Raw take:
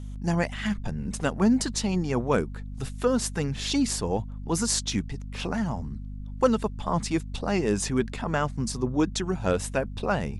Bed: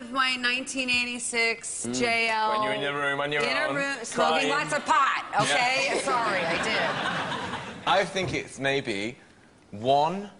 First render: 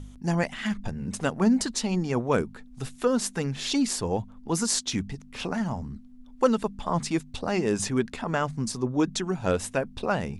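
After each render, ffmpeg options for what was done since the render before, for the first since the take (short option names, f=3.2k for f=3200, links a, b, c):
-af "bandreject=f=50:t=h:w=4,bandreject=f=100:t=h:w=4,bandreject=f=150:t=h:w=4,bandreject=f=200:t=h:w=4"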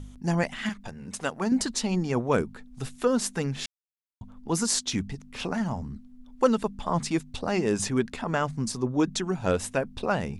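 -filter_complex "[0:a]asettb=1/sr,asplit=3[a][b][c];[a]atrim=end=0.694[d];[b]atrim=start=0.69:end=1.52,asetpts=PTS-STARTPTS,afade=t=in:d=0.004:c=qsin,afade=t=out:st=0.826:d=0.004:c=qsin,lowshelf=f=330:g=-11[e];[c]atrim=start=1.516[f];[d][e]acrossfade=d=0.004:c1=hsin:c2=qsin[g];[g][f]acrossfade=d=0.004:c1=qsin:c2=hsin,asplit=3[h][i][j];[h]atrim=end=3.66,asetpts=PTS-STARTPTS,afade=t=out:st=3.656:d=0.004:c=hsin[k];[i]atrim=start=3.66:end=4.21,asetpts=PTS-STARTPTS,volume=0[l];[j]atrim=start=4.21,asetpts=PTS-STARTPTS,afade=t=in:d=0.004:c=hsin[m];[k][l][m]concat=n=3:v=0:a=1"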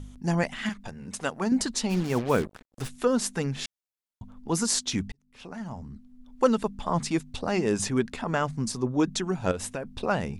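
-filter_complex "[0:a]asplit=3[a][b][c];[a]afade=t=out:st=1.89:d=0.02[d];[b]acrusher=bits=5:mix=0:aa=0.5,afade=t=in:st=1.89:d=0.02,afade=t=out:st=2.87:d=0.02[e];[c]afade=t=in:st=2.87:d=0.02[f];[d][e][f]amix=inputs=3:normalize=0,asettb=1/sr,asplit=3[g][h][i];[g]atrim=end=9.514[j];[h]atrim=start=9.51:end=9.97,asetpts=PTS-STARTPTS,afade=t=in:d=0.004:c=qsin,afade=t=out:st=0.456:d=0.004:c=qsin,acompressor=threshold=-28dB:ratio=6:attack=3.2:release=140:knee=1:detection=peak[k];[i]atrim=start=9.966[l];[j][k]acrossfade=d=0.004:c1=hsin:c2=qsin[m];[m][l]acrossfade=d=0.004:c1=qsin:c2=hsin,asplit=2[n][o];[n]atrim=end=5.12,asetpts=PTS-STARTPTS,afade=t=out:st=5.116:d=0.004:c=hsin[p];[o]atrim=start=5.12,asetpts=PTS-STARTPTS,afade=t=in:d=1.32[q];[p][q]concat=n=2:v=0:a=1"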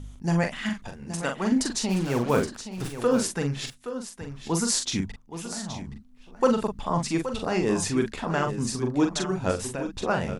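-filter_complex "[0:a]asplit=2[a][b];[b]adelay=42,volume=-5.5dB[c];[a][c]amix=inputs=2:normalize=0,aecho=1:1:822:0.282"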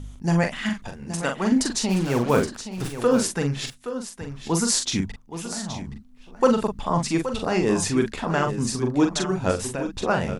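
-af "volume=3dB"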